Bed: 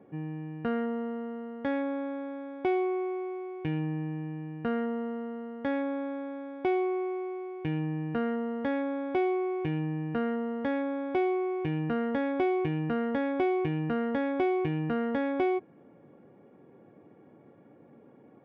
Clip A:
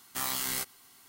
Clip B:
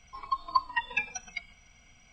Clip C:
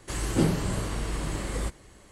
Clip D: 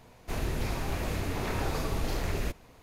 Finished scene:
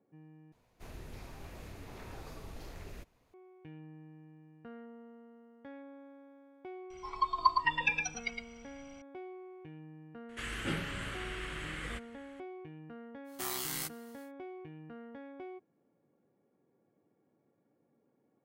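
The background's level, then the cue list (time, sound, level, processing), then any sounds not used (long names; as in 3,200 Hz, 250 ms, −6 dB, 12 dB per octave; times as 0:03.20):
bed −19 dB
0:00.52: overwrite with D −16 dB
0:06.90: mix in B −0.5 dB + single-tap delay 111 ms −5.5 dB
0:10.29: mix in C −14 dB + flat-topped bell 2,100 Hz +14.5 dB
0:13.24: mix in A −5.5 dB, fades 0.10 s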